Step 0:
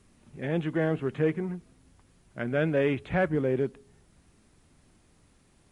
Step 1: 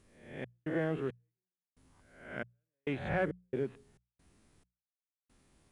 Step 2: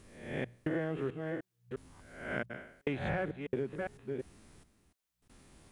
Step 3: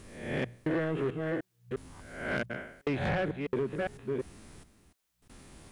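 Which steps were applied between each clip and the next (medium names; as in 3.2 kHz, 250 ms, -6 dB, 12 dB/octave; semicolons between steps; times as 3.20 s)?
reverse spectral sustain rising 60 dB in 0.67 s; trance gate "xx.xx...xxx..xx." 68 bpm -60 dB; hum notches 60/120/180 Hz; trim -7 dB
chunks repeated in reverse 352 ms, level -11.5 dB; compression 6:1, threshold -40 dBFS, peak gain reduction 13 dB; trim +8.5 dB
saturation -31 dBFS, distortion -13 dB; trim +7 dB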